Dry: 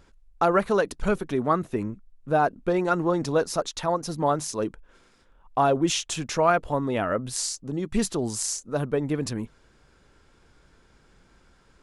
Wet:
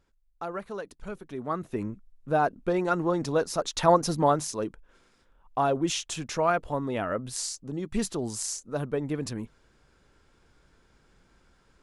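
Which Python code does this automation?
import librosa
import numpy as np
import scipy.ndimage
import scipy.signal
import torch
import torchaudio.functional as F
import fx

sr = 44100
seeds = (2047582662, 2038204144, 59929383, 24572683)

y = fx.gain(x, sr, db=fx.line((1.17, -14.0), (1.84, -2.5), (3.58, -2.5), (3.9, 6.0), (4.66, -4.0)))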